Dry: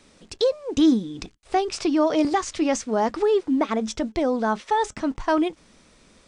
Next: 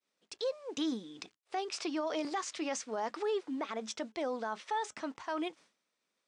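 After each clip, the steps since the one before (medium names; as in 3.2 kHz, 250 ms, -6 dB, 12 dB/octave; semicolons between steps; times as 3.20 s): frequency weighting A; expander -45 dBFS; peak limiter -18.5 dBFS, peak gain reduction 7 dB; trim -8 dB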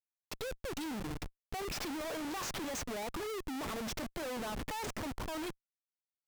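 Schmitt trigger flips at -44.5 dBFS; wow and flutter 17 cents; upward expansion 1.5:1, over -54 dBFS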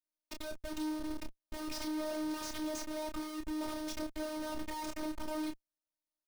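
in parallel at -9 dB: decimation with a swept rate 27×, swing 60% 3.2 Hz; on the sum: robot voice 309 Hz; doubling 29 ms -6 dB; trim -1.5 dB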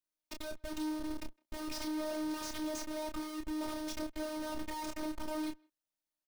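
speakerphone echo 160 ms, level -29 dB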